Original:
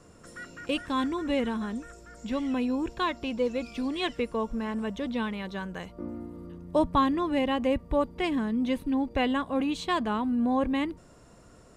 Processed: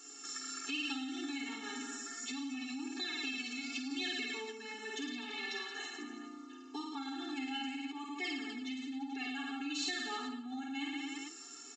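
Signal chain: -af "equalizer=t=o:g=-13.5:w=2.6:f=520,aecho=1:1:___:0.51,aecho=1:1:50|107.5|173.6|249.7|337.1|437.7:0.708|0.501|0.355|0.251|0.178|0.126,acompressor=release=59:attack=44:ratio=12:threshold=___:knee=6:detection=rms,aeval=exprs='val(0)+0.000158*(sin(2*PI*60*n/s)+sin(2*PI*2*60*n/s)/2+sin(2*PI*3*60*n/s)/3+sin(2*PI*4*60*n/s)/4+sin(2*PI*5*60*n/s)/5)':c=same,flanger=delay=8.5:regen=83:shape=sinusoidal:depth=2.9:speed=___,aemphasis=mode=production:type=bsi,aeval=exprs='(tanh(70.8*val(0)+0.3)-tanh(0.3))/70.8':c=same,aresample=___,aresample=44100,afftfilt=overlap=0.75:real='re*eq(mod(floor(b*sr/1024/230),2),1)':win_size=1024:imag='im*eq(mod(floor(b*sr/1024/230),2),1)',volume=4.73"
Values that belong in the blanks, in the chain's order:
7.3, 0.00631, 0.34, 16000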